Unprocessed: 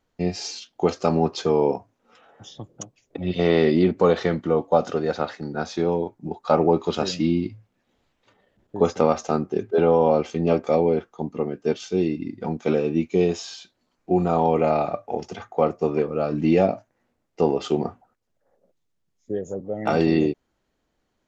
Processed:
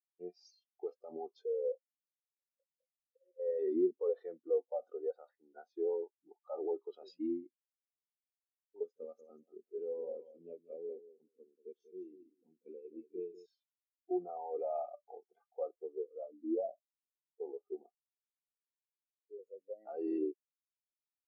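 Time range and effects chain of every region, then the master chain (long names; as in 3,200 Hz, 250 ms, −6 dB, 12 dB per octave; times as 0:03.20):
0:01.46–0:03.59: formant resonators in series e + mid-hump overdrive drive 13 dB, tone 1,500 Hz, clips at −14 dBFS
0:08.83–0:13.46: parametric band 860 Hz −14 dB 2.3 octaves + repeating echo 189 ms, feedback 32%, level −6 dB
0:15.77–0:19.39: low-pass filter 1,200 Hz 24 dB per octave + flanger 1.4 Hz, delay 2.6 ms, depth 3.9 ms, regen −63%
whole clip: high-pass filter 400 Hz 12 dB per octave; brickwall limiter −18 dBFS; every bin expanded away from the loudest bin 2.5 to 1; level −4 dB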